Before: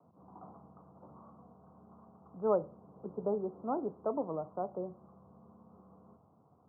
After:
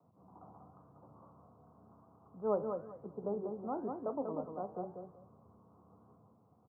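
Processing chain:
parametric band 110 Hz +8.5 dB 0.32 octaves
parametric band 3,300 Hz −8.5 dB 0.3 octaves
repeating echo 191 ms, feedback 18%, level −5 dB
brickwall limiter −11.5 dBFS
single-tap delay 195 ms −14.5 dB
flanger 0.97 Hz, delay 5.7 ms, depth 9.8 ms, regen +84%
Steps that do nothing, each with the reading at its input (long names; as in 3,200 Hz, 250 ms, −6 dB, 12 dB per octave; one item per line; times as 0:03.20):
parametric band 3,300 Hz: nothing at its input above 1,400 Hz
brickwall limiter −11.5 dBFS: peak of its input −18.0 dBFS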